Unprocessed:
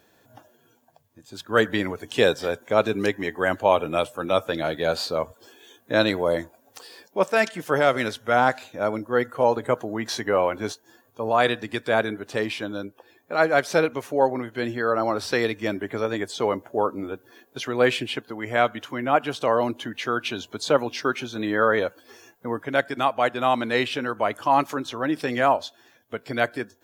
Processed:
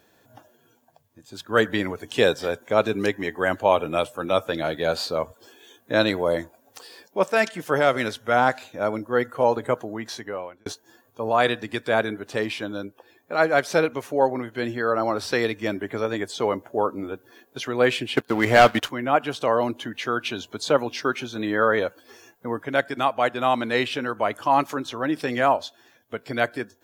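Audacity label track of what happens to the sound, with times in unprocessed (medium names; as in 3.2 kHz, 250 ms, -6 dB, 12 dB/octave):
9.640000	10.660000	fade out
18.170000	18.900000	waveshaping leveller passes 3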